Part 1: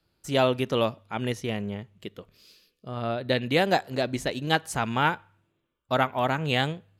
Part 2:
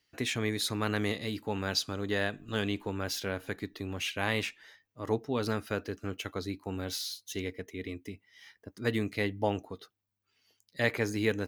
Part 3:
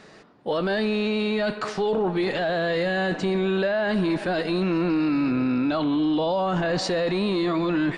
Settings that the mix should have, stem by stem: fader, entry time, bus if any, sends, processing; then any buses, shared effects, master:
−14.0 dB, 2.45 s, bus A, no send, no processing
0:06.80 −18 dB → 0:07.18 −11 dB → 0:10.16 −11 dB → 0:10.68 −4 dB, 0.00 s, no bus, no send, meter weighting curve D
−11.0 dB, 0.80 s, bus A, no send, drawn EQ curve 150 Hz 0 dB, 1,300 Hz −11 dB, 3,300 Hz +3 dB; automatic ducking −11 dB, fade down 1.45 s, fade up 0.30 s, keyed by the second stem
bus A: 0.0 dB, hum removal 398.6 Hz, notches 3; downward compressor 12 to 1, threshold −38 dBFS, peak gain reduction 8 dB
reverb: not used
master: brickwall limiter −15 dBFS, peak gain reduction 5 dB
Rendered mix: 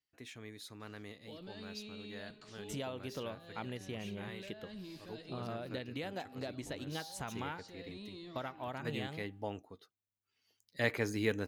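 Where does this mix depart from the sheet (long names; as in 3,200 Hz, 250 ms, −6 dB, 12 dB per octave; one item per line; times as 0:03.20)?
stem 1 −14.0 dB → −5.5 dB
stem 2: missing meter weighting curve D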